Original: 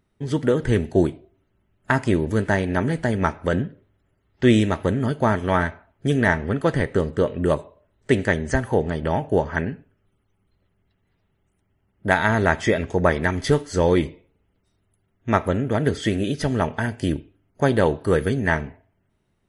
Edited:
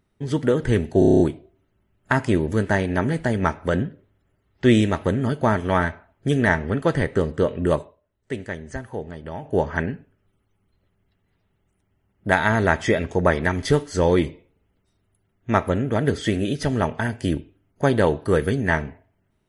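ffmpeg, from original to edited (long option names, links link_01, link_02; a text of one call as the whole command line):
ffmpeg -i in.wav -filter_complex "[0:a]asplit=10[link_01][link_02][link_03][link_04][link_05][link_06][link_07][link_08][link_09][link_10];[link_01]atrim=end=1.022[link_11];[link_02]atrim=start=0.988:end=1.022[link_12];[link_03]atrim=start=0.988:end=1.022[link_13];[link_04]atrim=start=0.988:end=1.022[link_14];[link_05]atrim=start=0.988:end=1.022[link_15];[link_06]atrim=start=0.988:end=1.022[link_16];[link_07]atrim=start=0.988:end=1.022[link_17];[link_08]atrim=start=0.988:end=7.79,asetpts=PTS-STARTPTS,afade=type=out:start_time=6.592:duration=0.21:silence=0.298538[link_18];[link_09]atrim=start=7.79:end=9.19,asetpts=PTS-STARTPTS,volume=-10.5dB[link_19];[link_10]atrim=start=9.19,asetpts=PTS-STARTPTS,afade=type=in:duration=0.21:silence=0.298538[link_20];[link_11][link_12]acrossfade=duration=0.004:curve1=hsin:curve2=hsin[link_21];[link_21][link_13]acrossfade=duration=0.004:curve1=hsin:curve2=hsin[link_22];[link_22][link_14]acrossfade=duration=0.004:curve1=hsin:curve2=hsin[link_23];[link_23][link_15]acrossfade=duration=0.004:curve1=hsin:curve2=hsin[link_24];[link_24][link_16]acrossfade=duration=0.004:curve1=hsin:curve2=hsin[link_25];[link_25][link_17]acrossfade=duration=0.004:curve1=hsin:curve2=hsin[link_26];[link_18][link_19][link_20]concat=n=3:v=0:a=1[link_27];[link_26][link_27]acrossfade=duration=0.004:curve1=hsin:curve2=hsin" out.wav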